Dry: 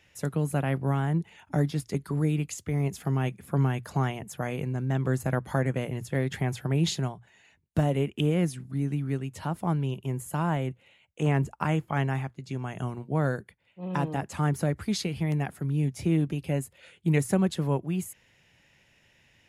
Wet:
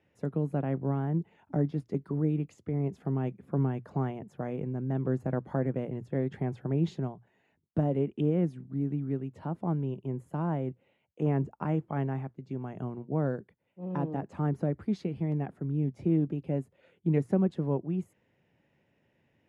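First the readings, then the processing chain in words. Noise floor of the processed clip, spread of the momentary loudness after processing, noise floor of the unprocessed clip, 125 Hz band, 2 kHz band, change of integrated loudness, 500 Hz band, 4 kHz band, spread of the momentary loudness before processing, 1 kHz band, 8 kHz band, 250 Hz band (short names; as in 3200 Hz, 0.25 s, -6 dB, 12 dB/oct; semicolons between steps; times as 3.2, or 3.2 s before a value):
-73 dBFS, 9 LU, -64 dBFS, -4.0 dB, -12.5 dB, -3.0 dB, -1.5 dB, under -15 dB, 7 LU, -6.0 dB, under -25 dB, -1.5 dB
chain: band-pass 310 Hz, Q 0.72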